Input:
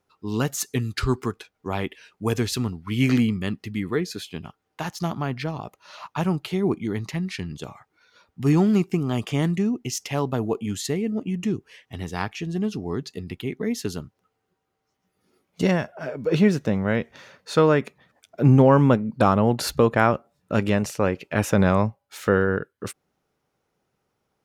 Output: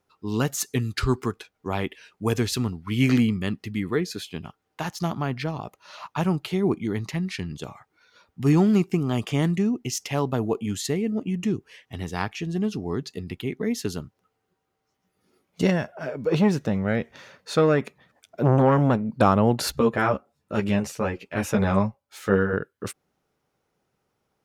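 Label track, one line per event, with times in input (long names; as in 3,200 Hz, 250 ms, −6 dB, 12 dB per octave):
15.700000	19.200000	saturating transformer saturates under 540 Hz
19.720000	22.530000	string-ensemble chorus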